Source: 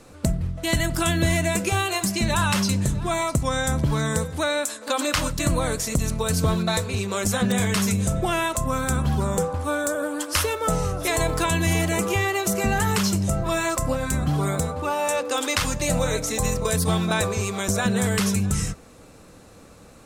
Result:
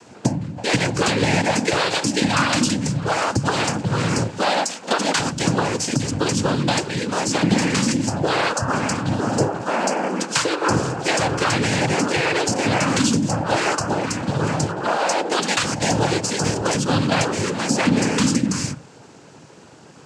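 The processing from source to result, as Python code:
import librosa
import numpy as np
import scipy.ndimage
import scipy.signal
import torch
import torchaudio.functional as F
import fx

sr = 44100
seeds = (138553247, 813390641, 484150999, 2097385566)

y = fx.hum_notches(x, sr, base_hz=50, count=3)
y = fx.noise_vocoder(y, sr, seeds[0], bands=8)
y = F.gain(torch.from_numpy(y), 4.5).numpy()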